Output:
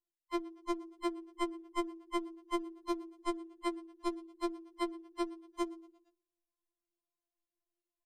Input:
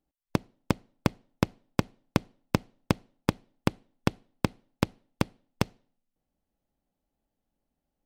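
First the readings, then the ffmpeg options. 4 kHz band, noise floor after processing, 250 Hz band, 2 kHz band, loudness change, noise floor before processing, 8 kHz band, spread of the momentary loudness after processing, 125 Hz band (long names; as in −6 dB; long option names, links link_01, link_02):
−8.0 dB, below −85 dBFS, −6.5 dB, −10.0 dB, −7.0 dB, −85 dBFS, −10.0 dB, 2 LU, below −40 dB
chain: -filter_complex "[0:a]afftfilt=real='real(if(between(b,1,1008),(2*floor((b-1)/24)+1)*24-b,b),0)':imag='imag(if(between(b,1,1008),(2*floor((b-1)/24)+1)*24-b,b),0)*if(between(b,1,1008),-1,1)':win_size=2048:overlap=0.75,afftdn=noise_reduction=15:noise_floor=-45,aemphasis=mode=production:type=50kf,bandreject=frequency=54.9:width_type=h:width=4,bandreject=frequency=109.8:width_type=h:width=4,bandreject=frequency=164.7:width_type=h:width=4,bandreject=frequency=219.6:width_type=h:width=4,bandreject=frequency=274.5:width_type=h:width=4,bandreject=frequency=329.4:width_type=h:width=4,acrossover=split=440|1100[link_01][link_02][link_03];[link_03]acompressor=threshold=-39dB:ratio=12[link_04];[link_01][link_02][link_04]amix=inputs=3:normalize=0,alimiter=limit=-20dB:level=0:latency=1:release=55,acrossover=split=91|320|3300[link_05][link_06][link_07][link_08];[link_06]acompressor=threshold=-44dB:ratio=4[link_09];[link_08]acompressor=threshold=-52dB:ratio=4[link_10];[link_05][link_09][link_07][link_10]amix=inputs=4:normalize=0,lowpass=11000,asplit=5[link_11][link_12][link_13][link_14][link_15];[link_12]adelay=116,afreqshift=35,volume=-21dB[link_16];[link_13]adelay=232,afreqshift=70,volume=-26.4dB[link_17];[link_14]adelay=348,afreqshift=105,volume=-31.7dB[link_18];[link_15]adelay=464,afreqshift=140,volume=-37.1dB[link_19];[link_11][link_16][link_17][link_18][link_19]amix=inputs=5:normalize=0,afftfilt=real='re*4*eq(mod(b,16),0)':imag='im*4*eq(mod(b,16),0)':win_size=2048:overlap=0.75,volume=3dB"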